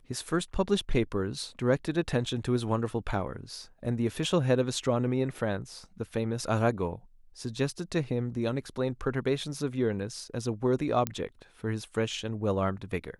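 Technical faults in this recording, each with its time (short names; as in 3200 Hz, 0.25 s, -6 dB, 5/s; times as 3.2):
11.07 pop -13 dBFS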